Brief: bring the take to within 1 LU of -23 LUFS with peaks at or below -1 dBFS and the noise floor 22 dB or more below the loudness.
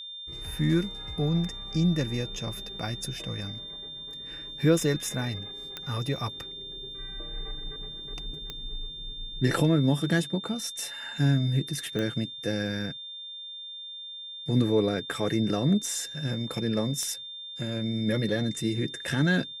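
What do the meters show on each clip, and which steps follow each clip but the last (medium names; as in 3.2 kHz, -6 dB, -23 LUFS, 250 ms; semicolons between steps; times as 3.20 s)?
clicks found 4; steady tone 3.6 kHz; tone level -38 dBFS; loudness -29.5 LUFS; peak level -11.5 dBFS; loudness target -23.0 LUFS
-> de-click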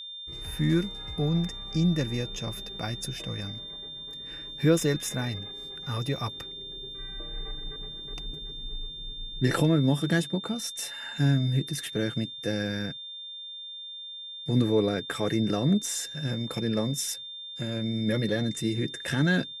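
clicks found 0; steady tone 3.6 kHz; tone level -38 dBFS
-> band-stop 3.6 kHz, Q 30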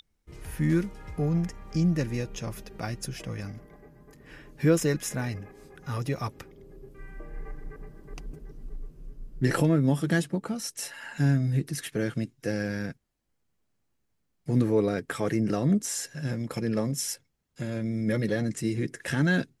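steady tone not found; loudness -28.5 LUFS; peak level -12.0 dBFS; loudness target -23.0 LUFS
-> trim +5.5 dB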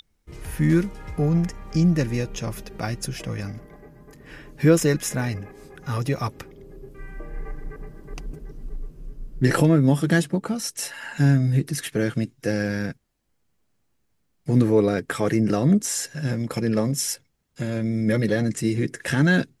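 loudness -23.0 LUFS; peak level -6.5 dBFS; noise floor -70 dBFS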